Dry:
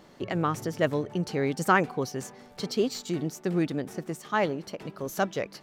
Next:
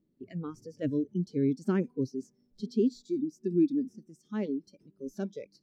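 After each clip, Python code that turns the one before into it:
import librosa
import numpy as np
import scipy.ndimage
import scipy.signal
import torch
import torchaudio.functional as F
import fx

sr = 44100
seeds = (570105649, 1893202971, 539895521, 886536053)

y = fx.low_shelf(x, sr, hz=190.0, db=6.0)
y = fx.noise_reduce_blind(y, sr, reduce_db=21)
y = fx.curve_eq(y, sr, hz=(100.0, 310.0, 770.0, 5400.0, 14000.0), db=(0, 6, -19, -12, -26))
y = y * 10.0 ** (-2.5 / 20.0)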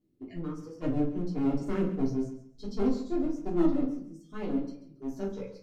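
y = fx.clip_asym(x, sr, top_db=-38.5, bottom_db=-21.0)
y = fx.echo_feedback(y, sr, ms=138, feedback_pct=22, wet_db=-13)
y = fx.room_shoebox(y, sr, seeds[0], volume_m3=180.0, walls='furnished', distance_m=3.2)
y = y * 10.0 ** (-6.0 / 20.0)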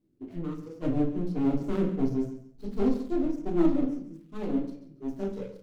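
y = scipy.signal.medfilt(x, 25)
y = y * 10.0 ** (2.0 / 20.0)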